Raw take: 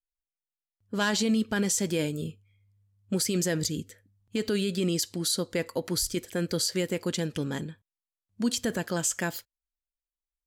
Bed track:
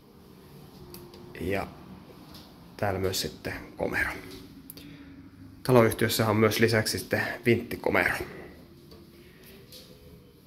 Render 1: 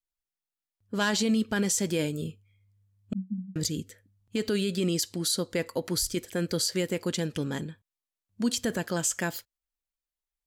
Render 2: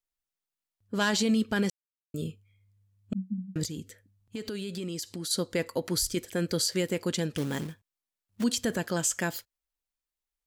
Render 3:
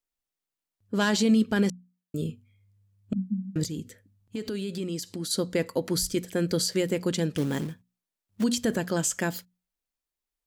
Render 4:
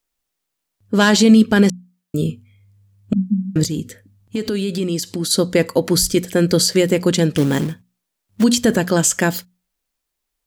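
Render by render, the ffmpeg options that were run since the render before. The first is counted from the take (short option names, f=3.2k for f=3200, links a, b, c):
-filter_complex "[0:a]asettb=1/sr,asplit=3[a][b][c];[a]atrim=end=3.134[d];[b]atrim=start=3.13:end=3.56,asetpts=PTS-STARTPTS,afade=t=in:d=0.004:c=qsin,afade=t=out:st=0.426:d=0.004:c=qsin,asuperpass=centerf=210:order=12:qfactor=4.1[e];[c]atrim=start=3.556[f];[d][e]acrossfade=d=0.004:c1=hsin:c2=qsin[g];[g][f]acrossfade=d=0.004:c1=qsin:c2=hsin"
-filter_complex "[0:a]asettb=1/sr,asplit=3[a][b][c];[a]atrim=end=3.644[d];[b]atrim=start=3.64:end=5.31,asetpts=PTS-STARTPTS,afade=t=in:d=0.004:c=qsin,afade=t=out:st=1.666:d=0.004:c=qsin,acompressor=threshold=-34dB:ratio=3:attack=3.2:release=140:knee=1:detection=peak[e];[c]atrim=start=5.306[f];[d][e]acrossfade=d=0.004:c1=hsin:c2=qsin[g];[g][f]acrossfade=d=0.004:c1=qsin:c2=hsin,asettb=1/sr,asplit=3[h][i][j];[h]atrim=end=7.374[k];[i]atrim=start=7.37:end=8.44,asetpts=PTS-STARTPTS,afade=t=in:d=0.004:c=qsin,afade=t=out:st=1.066:d=0.004:c=qsin,acrusher=bits=3:mode=log:mix=0:aa=0.000001[l];[j]atrim=start=8.436[m];[k][l]acrossfade=d=0.004:c1=hsin:c2=qsin[n];[n][m]acrossfade=d=0.004:c1=qsin:c2=hsin,asplit=3[o][p][q];[o]atrim=end=1.7,asetpts=PTS-STARTPTS,afade=t=out:st=1.696:d=0.004:c=hsin[r];[p]atrim=start=1.7:end=2.14,asetpts=PTS-STARTPTS,volume=0[s];[q]atrim=start=2.14,asetpts=PTS-STARTPTS,afade=t=in:d=0.004:c=hsin[t];[r][s][t]concat=n=3:v=0:a=1"
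-af "equalizer=f=240:w=0.47:g=4.5,bandreject=f=60:t=h:w=6,bandreject=f=120:t=h:w=6,bandreject=f=180:t=h:w=6,bandreject=f=240:t=h:w=6"
-af "volume=11dB"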